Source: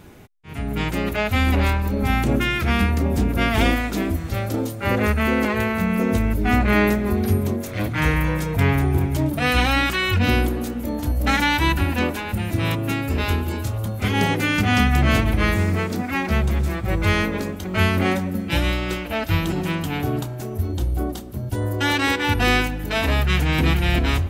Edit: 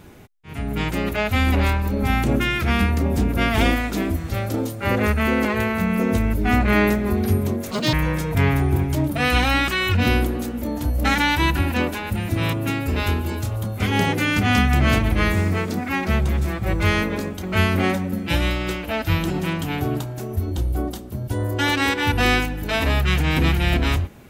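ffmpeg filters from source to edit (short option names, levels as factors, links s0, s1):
-filter_complex "[0:a]asplit=3[s0][s1][s2];[s0]atrim=end=7.714[s3];[s1]atrim=start=7.71:end=8.15,asetpts=PTS-STARTPTS,asetrate=87759,aresample=44100[s4];[s2]atrim=start=8.146[s5];[s3][s4]acrossfade=d=0.004:c1=hsin:c2=hsin[s6];[s6][s5]acrossfade=d=0.004:c1=hsin:c2=hsin"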